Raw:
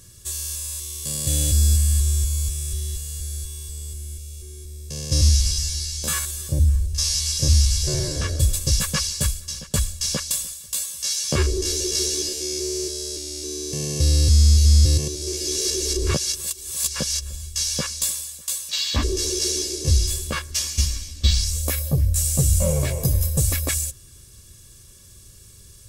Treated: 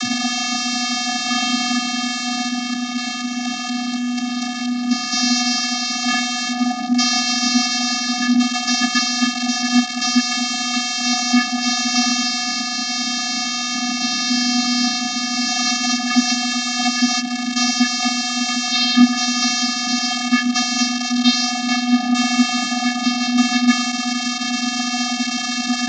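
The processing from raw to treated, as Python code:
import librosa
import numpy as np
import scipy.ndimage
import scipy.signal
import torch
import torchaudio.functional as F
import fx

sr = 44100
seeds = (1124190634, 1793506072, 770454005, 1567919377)

y = fx.delta_mod(x, sr, bps=32000, step_db=-19.0)
y = fx.high_shelf(y, sr, hz=3900.0, db=9.0)
y = fx.vocoder(y, sr, bands=32, carrier='square', carrier_hz=245.0)
y = y * librosa.db_to_amplitude(4.5)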